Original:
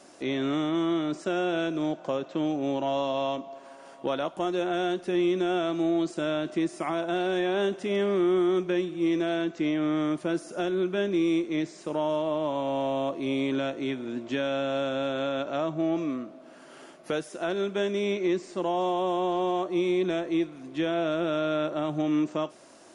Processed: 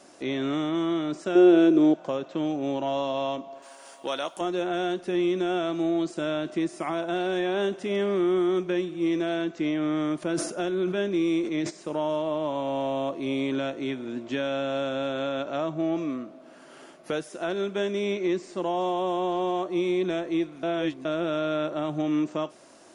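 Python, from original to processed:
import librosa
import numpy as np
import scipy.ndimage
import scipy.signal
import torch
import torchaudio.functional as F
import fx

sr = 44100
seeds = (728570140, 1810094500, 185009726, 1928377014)

y = fx.peak_eq(x, sr, hz=360.0, db=14.5, octaves=0.77, at=(1.35, 1.94))
y = fx.riaa(y, sr, side='recording', at=(3.62, 4.41))
y = fx.sustainer(y, sr, db_per_s=72.0, at=(10.22, 11.69), fade=0.02)
y = fx.edit(y, sr, fx.reverse_span(start_s=20.63, length_s=0.42), tone=tone)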